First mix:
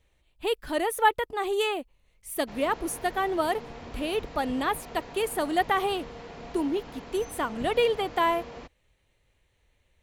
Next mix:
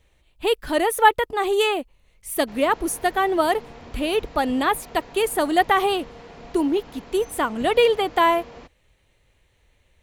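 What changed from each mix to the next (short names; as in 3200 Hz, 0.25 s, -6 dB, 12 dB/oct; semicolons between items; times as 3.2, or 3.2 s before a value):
speech +6.5 dB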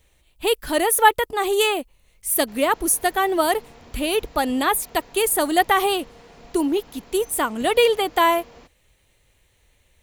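background -5.0 dB; master: add high shelf 6100 Hz +12 dB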